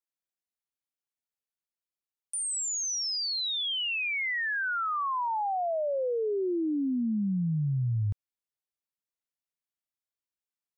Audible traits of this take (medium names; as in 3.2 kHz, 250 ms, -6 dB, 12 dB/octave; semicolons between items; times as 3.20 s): noise floor -95 dBFS; spectral tilt -3.5 dB/octave